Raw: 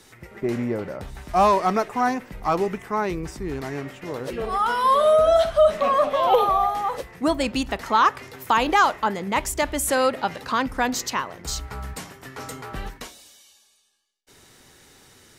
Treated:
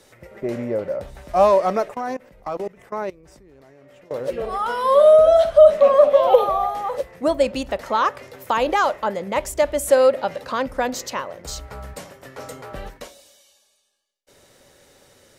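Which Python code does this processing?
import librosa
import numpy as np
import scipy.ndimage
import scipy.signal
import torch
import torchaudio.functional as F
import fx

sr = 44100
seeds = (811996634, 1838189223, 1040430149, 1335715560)

y = fx.peak_eq(x, sr, hz=560.0, db=14.5, octaves=0.4)
y = fx.level_steps(y, sr, step_db=23, at=(1.94, 4.11))
y = y * 10.0 ** (-3.0 / 20.0)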